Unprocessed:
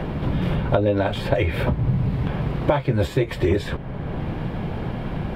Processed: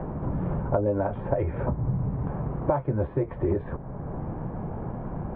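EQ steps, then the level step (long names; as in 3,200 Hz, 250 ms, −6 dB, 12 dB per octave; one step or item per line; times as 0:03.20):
transistor ladder low-pass 1,400 Hz, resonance 25%
0.0 dB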